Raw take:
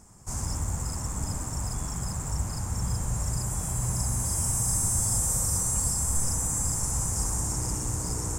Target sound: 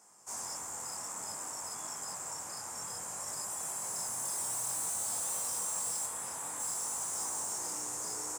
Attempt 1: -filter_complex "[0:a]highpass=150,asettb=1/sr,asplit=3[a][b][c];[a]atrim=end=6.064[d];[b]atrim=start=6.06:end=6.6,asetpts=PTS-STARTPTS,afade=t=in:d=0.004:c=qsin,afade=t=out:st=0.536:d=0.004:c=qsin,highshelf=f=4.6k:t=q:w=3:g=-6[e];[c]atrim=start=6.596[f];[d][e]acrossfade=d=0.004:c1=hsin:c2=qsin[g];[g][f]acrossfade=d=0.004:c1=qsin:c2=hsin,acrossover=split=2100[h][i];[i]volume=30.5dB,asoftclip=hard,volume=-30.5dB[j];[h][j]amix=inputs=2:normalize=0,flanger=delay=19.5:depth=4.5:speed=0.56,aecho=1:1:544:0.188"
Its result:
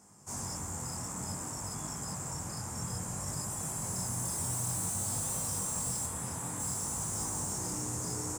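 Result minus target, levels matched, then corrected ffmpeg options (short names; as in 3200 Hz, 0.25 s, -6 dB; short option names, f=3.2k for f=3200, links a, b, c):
125 Hz band +19.5 dB
-filter_complex "[0:a]highpass=540,asettb=1/sr,asplit=3[a][b][c];[a]atrim=end=6.064[d];[b]atrim=start=6.06:end=6.6,asetpts=PTS-STARTPTS,afade=t=in:d=0.004:c=qsin,afade=t=out:st=0.536:d=0.004:c=qsin,highshelf=f=4.6k:t=q:w=3:g=-6[e];[c]atrim=start=6.596[f];[d][e]acrossfade=d=0.004:c1=hsin:c2=qsin[g];[g][f]acrossfade=d=0.004:c1=qsin:c2=hsin,acrossover=split=2100[h][i];[i]volume=30.5dB,asoftclip=hard,volume=-30.5dB[j];[h][j]amix=inputs=2:normalize=0,flanger=delay=19.5:depth=4.5:speed=0.56,aecho=1:1:544:0.188"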